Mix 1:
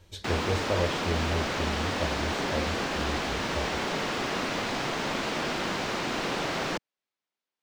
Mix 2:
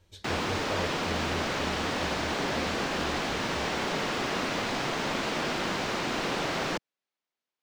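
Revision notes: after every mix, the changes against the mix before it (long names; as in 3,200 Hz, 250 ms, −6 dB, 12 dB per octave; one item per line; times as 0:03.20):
speech −7.5 dB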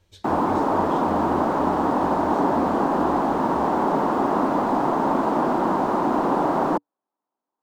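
background: add drawn EQ curve 110 Hz 0 dB, 290 Hz +14 dB, 470 Hz +7 dB, 940 Hz +15 dB, 2,300 Hz −13 dB, 5,700 Hz −13 dB, 11,000 Hz −2 dB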